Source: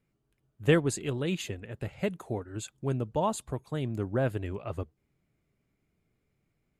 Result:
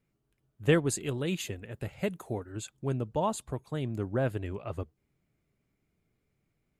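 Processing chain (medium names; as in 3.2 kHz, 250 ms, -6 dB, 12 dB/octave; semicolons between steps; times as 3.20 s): 0.85–2.52 s: treble shelf 10 kHz +10 dB; trim -1 dB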